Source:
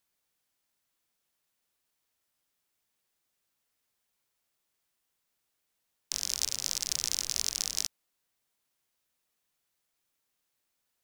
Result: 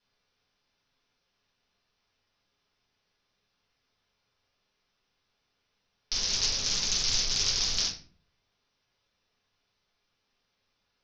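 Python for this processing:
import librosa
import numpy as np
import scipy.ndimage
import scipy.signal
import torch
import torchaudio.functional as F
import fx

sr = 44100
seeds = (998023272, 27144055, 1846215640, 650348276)

y = scipy.signal.sosfilt(scipy.signal.butter(16, 5900.0, 'lowpass', fs=sr, output='sos'), x)
y = fx.room_shoebox(y, sr, seeds[0], volume_m3=33.0, walls='mixed', distance_m=1.3)
y = fx.doppler_dist(y, sr, depth_ms=0.43)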